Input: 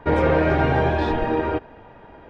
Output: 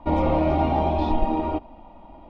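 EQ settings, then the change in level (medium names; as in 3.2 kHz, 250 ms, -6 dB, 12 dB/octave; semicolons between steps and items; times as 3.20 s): distance through air 110 m; bass shelf 68 Hz +8.5 dB; static phaser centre 440 Hz, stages 6; +1.0 dB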